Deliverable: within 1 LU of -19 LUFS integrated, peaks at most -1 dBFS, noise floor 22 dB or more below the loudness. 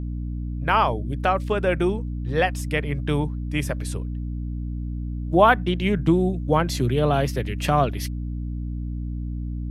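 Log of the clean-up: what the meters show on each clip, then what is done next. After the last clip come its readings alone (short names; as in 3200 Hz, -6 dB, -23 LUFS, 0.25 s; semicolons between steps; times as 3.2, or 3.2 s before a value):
hum 60 Hz; harmonics up to 300 Hz; hum level -26 dBFS; loudness -24.0 LUFS; peak -3.5 dBFS; loudness target -19.0 LUFS
-> de-hum 60 Hz, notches 5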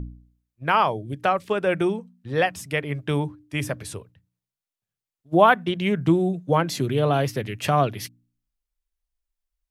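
hum none; loudness -23.5 LUFS; peak -4.0 dBFS; loudness target -19.0 LUFS
-> gain +4.5 dB; limiter -1 dBFS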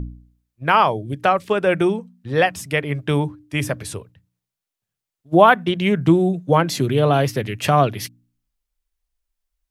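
loudness -19.0 LUFS; peak -1.0 dBFS; noise floor -86 dBFS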